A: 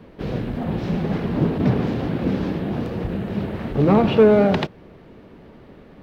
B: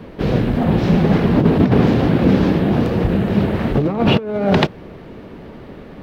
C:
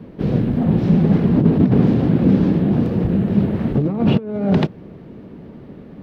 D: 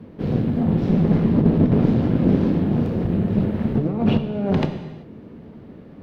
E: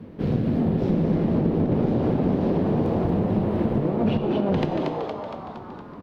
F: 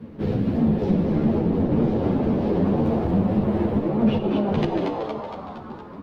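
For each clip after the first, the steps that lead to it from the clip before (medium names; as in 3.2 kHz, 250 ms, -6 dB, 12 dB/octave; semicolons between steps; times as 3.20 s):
compressor with a negative ratio -19 dBFS, ratio -0.5; trim +7 dB
peaking EQ 180 Hz +11.5 dB 2.7 oct; trim -10.5 dB
valve stage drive 5 dB, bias 0.7; gated-style reverb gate 410 ms falling, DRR 6.5 dB
frequency-shifting echo 232 ms, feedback 57%, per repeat +140 Hz, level -7 dB; compression, threshold -18 dBFS, peak gain reduction 8 dB
three-phase chorus; trim +4 dB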